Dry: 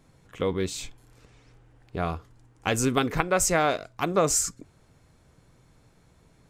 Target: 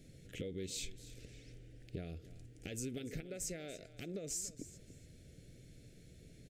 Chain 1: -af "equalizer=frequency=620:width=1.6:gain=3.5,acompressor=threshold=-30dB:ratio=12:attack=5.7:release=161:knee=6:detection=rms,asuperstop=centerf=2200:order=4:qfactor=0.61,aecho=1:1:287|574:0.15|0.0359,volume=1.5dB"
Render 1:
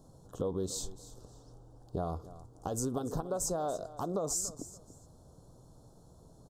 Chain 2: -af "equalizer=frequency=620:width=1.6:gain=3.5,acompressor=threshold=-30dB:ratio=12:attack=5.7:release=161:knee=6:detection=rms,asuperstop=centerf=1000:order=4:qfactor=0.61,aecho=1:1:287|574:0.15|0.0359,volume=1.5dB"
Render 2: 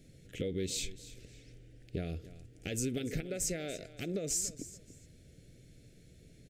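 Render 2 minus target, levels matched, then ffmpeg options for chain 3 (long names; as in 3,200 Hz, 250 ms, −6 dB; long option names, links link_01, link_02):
downward compressor: peak gain reduction −7.5 dB
-af "equalizer=frequency=620:width=1.6:gain=3.5,acompressor=threshold=-38dB:ratio=12:attack=5.7:release=161:knee=6:detection=rms,asuperstop=centerf=1000:order=4:qfactor=0.61,aecho=1:1:287|574:0.15|0.0359,volume=1.5dB"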